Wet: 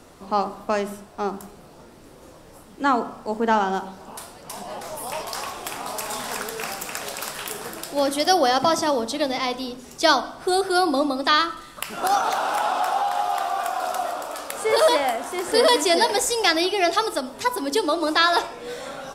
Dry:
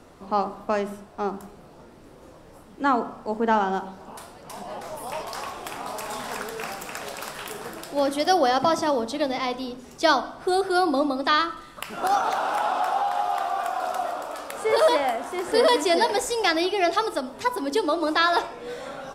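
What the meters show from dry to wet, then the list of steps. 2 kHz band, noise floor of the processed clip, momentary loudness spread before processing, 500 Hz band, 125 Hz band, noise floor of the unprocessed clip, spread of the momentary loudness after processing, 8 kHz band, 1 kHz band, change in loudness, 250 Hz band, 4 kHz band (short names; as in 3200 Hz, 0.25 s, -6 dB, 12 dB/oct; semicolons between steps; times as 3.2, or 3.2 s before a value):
+2.5 dB, -47 dBFS, 15 LU, +1.0 dB, +1.0 dB, -48 dBFS, 14 LU, +7.0 dB, +1.5 dB, +2.0 dB, +1.0 dB, +5.0 dB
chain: high shelf 3600 Hz +7.5 dB; gain +1 dB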